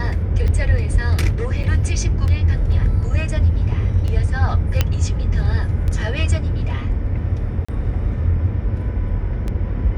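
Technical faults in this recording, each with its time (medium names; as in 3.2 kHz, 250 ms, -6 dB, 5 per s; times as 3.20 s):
tick 33 1/3 rpm -14 dBFS
1.63–1.64 s: dropout 6.4 ms
4.81 s: pop -2 dBFS
7.65–7.68 s: dropout 35 ms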